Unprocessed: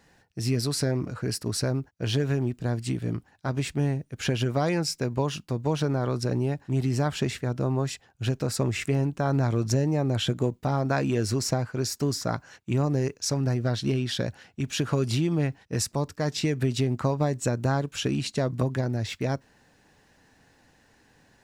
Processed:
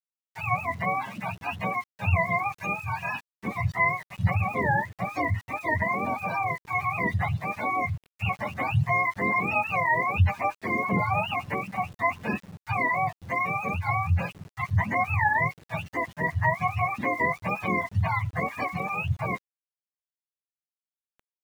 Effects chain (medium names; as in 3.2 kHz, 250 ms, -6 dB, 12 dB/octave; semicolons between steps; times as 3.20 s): spectrum inverted on a logarithmic axis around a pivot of 540 Hz; comb 1.1 ms, depth 53%; small samples zeroed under -47 dBFS; trim +1.5 dB